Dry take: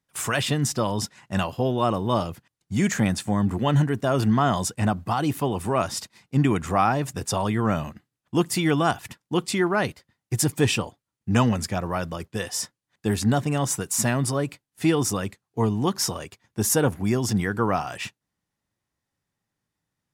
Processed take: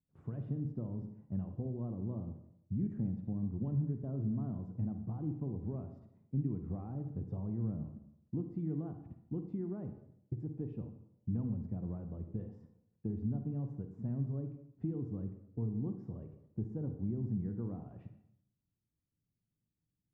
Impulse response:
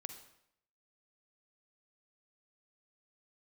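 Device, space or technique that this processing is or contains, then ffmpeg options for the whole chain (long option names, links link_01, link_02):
television next door: -filter_complex "[0:a]acompressor=threshold=-31dB:ratio=3,lowpass=250[link_01];[1:a]atrim=start_sample=2205[link_02];[link_01][link_02]afir=irnorm=-1:irlink=0,asettb=1/sr,asplit=3[link_03][link_04][link_05];[link_03]atrim=end=10.334[link_06];[link_04]atrim=start=10.33:end=10.76,asetpts=PTS-STARTPTS,afade=type=in:duration=0.004:curve=qsin,afade=type=out:start_time=0.426:duration=0.004:curve=qsin,equalizer=frequency=95:width=0.98:gain=-7[link_07];[link_05]atrim=start=10.756[link_08];[link_06][link_07]acrossfade=duration=0.004:curve1=hsin:curve2=qsin[link_09];[link_09][link_08]acrossfade=duration=0.004:curve1=qsin:curve2=hsin,volume=1.5dB"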